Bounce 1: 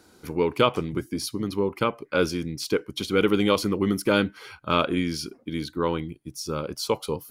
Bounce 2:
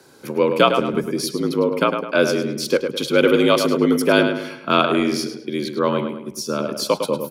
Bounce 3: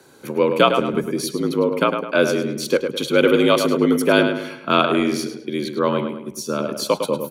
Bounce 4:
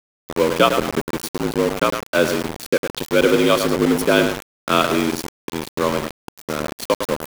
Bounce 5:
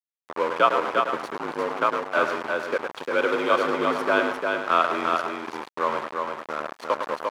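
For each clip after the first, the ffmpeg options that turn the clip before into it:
-filter_complex "[0:a]afreqshift=59,asplit=2[a][b];[b]adelay=105,lowpass=f=3.5k:p=1,volume=-6.5dB,asplit=2[c][d];[d]adelay=105,lowpass=f=3.5k:p=1,volume=0.43,asplit=2[e][f];[f]adelay=105,lowpass=f=3.5k:p=1,volume=0.43,asplit=2[g][h];[h]adelay=105,lowpass=f=3.5k:p=1,volume=0.43,asplit=2[i][j];[j]adelay=105,lowpass=f=3.5k:p=1,volume=0.43[k];[a][c][e][g][i][k]amix=inputs=6:normalize=0,volume=5.5dB"
-af "bandreject=f=5.1k:w=6"
-af "aeval=exprs='val(0)*gte(abs(val(0)),0.1)':c=same"
-af "bandpass=f=1.1k:t=q:w=1.3:csg=0,aecho=1:1:350:0.631"

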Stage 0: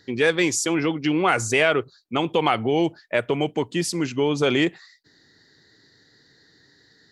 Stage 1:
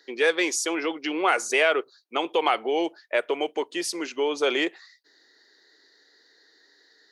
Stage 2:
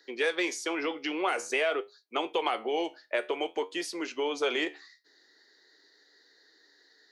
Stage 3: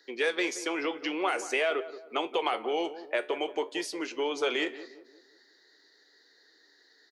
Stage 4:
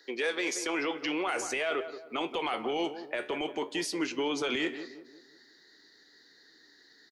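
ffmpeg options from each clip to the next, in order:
-af "highpass=f=360:w=0.5412,highpass=f=360:w=1.3066,bandreject=f=7.5k:w=10,volume=-1.5dB"
-filter_complex "[0:a]flanger=delay=9.6:depth=4.7:regen=71:speed=0.5:shape=sinusoidal,acrossover=split=510|3900[a][b][c];[a]acompressor=threshold=-34dB:ratio=4[d];[b]acompressor=threshold=-29dB:ratio=4[e];[c]acompressor=threshold=-43dB:ratio=4[f];[d][e][f]amix=inputs=3:normalize=0,volume=1.5dB"
-filter_complex "[0:a]asplit=2[a][b];[b]adelay=177,lowpass=f=1.1k:p=1,volume=-12.5dB,asplit=2[c][d];[d]adelay=177,lowpass=f=1.1k:p=1,volume=0.46,asplit=2[e][f];[f]adelay=177,lowpass=f=1.1k:p=1,volume=0.46,asplit=2[g][h];[h]adelay=177,lowpass=f=1.1k:p=1,volume=0.46,asplit=2[i][j];[j]adelay=177,lowpass=f=1.1k:p=1,volume=0.46[k];[a][c][e][g][i][k]amix=inputs=6:normalize=0"
-filter_complex "[0:a]alimiter=level_in=0.5dB:limit=-24dB:level=0:latency=1:release=15,volume=-0.5dB,asubboost=boost=8.5:cutoff=170,asplit=2[a][b];[b]adelay=130,highpass=300,lowpass=3.4k,asoftclip=type=hard:threshold=-31dB,volume=-27dB[c];[a][c]amix=inputs=2:normalize=0,volume=3dB"

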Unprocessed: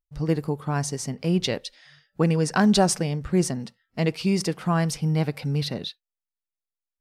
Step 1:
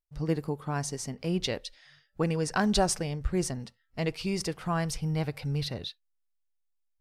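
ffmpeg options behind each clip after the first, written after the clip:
-af "asubboost=boost=10.5:cutoff=61,volume=-4.5dB"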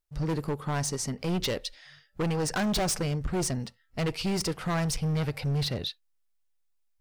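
-af "asoftclip=type=hard:threshold=-30dB,volume=5dB"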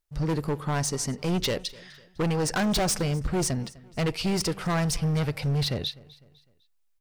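-af "aecho=1:1:252|504|756:0.0794|0.0326|0.0134,volume=2.5dB"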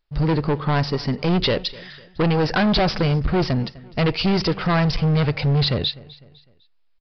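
-af "asoftclip=type=hard:threshold=-24.5dB,aresample=11025,aresample=44100,volume=8.5dB"

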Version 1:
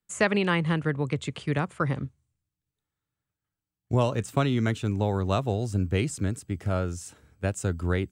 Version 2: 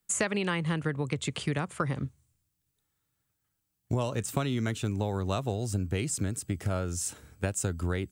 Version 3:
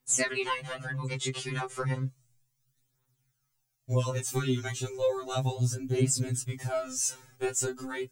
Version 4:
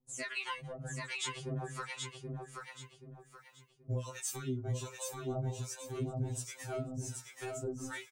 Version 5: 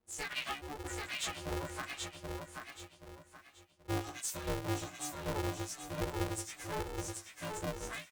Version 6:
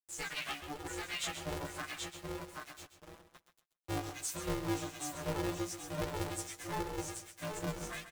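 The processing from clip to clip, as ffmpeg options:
-af "highshelf=f=5.7k:g=9.5,acompressor=threshold=-32dB:ratio=4,volume=4.5dB"
-af "aphaser=in_gain=1:out_gain=1:delay=2.9:decay=0.61:speed=0.33:type=triangular,equalizer=f=6k:w=2.7:g=6.5,afftfilt=real='re*2.45*eq(mod(b,6),0)':imag='im*2.45*eq(mod(b,6),0)':win_size=2048:overlap=0.75,volume=1dB"
-filter_complex "[0:a]acompressor=threshold=-31dB:ratio=3,acrossover=split=780[a][b];[a]aeval=exprs='val(0)*(1-1/2+1/2*cos(2*PI*1.3*n/s))':c=same[c];[b]aeval=exprs='val(0)*(1-1/2-1/2*cos(2*PI*1.3*n/s))':c=same[d];[c][d]amix=inputs=2:normalize=0,asplit=2[e][f];[f]aecho=0:1:779|1558|2337|3116:0.631|0.202|0.0646|0.0207[g];[e][g]amix=inputs=2:normalize=0,volume=-1dB"
-af "aeval=exprs='val(0)*sgn(sin(2*PI*220*n/s))':c=same"
-filter_complex "[0:a]aeval=exprs='val(0)*gte(abs(val(0)),0.00355)':c=same,flanger=delay=5.7:depth=1.2:regen=38:speed=0.89:shape=sinusoidal,asplit=2[a][b];[b]aecho=0:1:132|264|396:0.282|0.0564|0.0113[c];[a][c]amix=inputs=2:normalize=0,volume=3.5dB"

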